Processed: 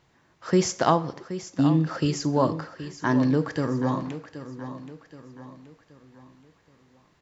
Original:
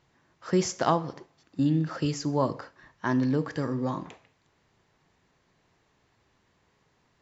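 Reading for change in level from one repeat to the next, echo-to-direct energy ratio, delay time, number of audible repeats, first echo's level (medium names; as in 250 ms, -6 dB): -7.5 dB, -11.5 dB, 775 ms, 4, -12.5 dB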